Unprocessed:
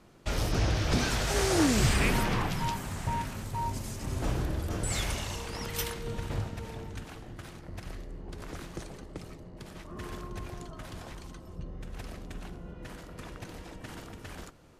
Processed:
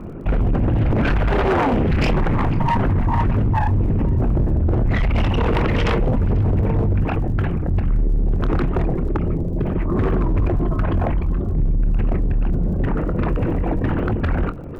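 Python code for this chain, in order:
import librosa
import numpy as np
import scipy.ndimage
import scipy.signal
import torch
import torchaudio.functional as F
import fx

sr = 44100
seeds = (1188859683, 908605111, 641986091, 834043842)

p1 = fx.envelope_sharpen(x, sr, power=2.0)
p2 = scipy.signal.sosfilt(scipy.signal.cheby1(4, 1.0, 2700.0, 'lowpass', fs=sr, output='sos'), p1)
p3 = fx.hum_notches(p2, sr, base_hz=60, count=3)
p4 = fx.over_compress(p3, sr, threshold_db=-38.0, ratio=-0.5)
p5 = p3 + F.gain(torch.from_numpy(p4), 2.0).numpy()
p6 = fx.fold_sine(p5, sr, drive_db=10, ceiling_db=-17.0)
p7 = fx.chorus_voices(p6, sr, voices=2, hz=0.29, base_ms=24, depth_ms=3.8, mix_pct=20)
p8 = fx.dmg_crackle(p7, sr, seeds[0], per_s=47.0, level_db=-45.0)
p9 = np.clip(p8, -10.0 ** (-19.0 / 20.0), 10.0 ** (-19.0 / 20.0))
p10 = p9 + fx.echo_single(p9, sr, ms=494, db=-22.5, dry=0)
p11 = fx.record_warp(p10, sr, rpm=45.0, depth_cents=160.0)
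y = F.gain(torch.from_numpy(p11), 5.0).numpy()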